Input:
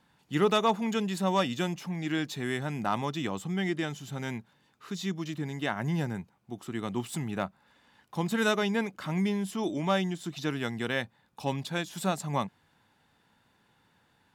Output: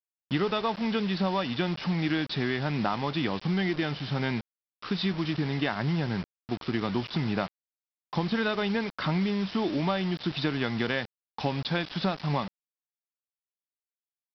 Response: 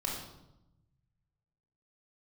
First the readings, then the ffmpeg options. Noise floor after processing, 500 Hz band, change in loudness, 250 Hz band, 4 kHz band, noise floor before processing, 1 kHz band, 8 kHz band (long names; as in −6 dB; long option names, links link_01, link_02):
below −85 dBFS, 0.0 dB, +2.0 dB, +2.5 dB, +3.5 dB, −68 dBFS, 0.0 dB, below −15 dB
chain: -af "acompressor=threshold=-33dB:ratio=12,aresample=11025,acrusher=bits=7:mix=0:aa=0.000001,aresample=44100,volume=9dB"